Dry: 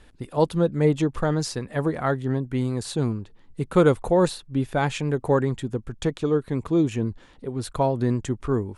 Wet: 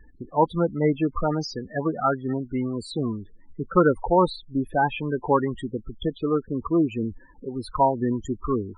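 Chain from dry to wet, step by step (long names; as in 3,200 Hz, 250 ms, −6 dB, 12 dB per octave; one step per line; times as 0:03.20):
spectral peaks only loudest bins 16
graphic EQ with 10 bands 125 Hz −10 dB, 500 Hz −6 dB, 1,000 Hz +7 dB
level +3 dB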